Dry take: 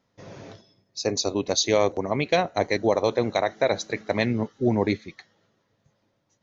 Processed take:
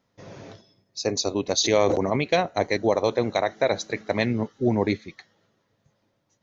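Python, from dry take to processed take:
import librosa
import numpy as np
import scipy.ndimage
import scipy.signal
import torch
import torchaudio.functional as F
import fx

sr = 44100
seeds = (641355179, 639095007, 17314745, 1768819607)

y = fx.sustainer(x, sr, db_per_s=24.0, at=(1.63, 2.19), fade=0.02)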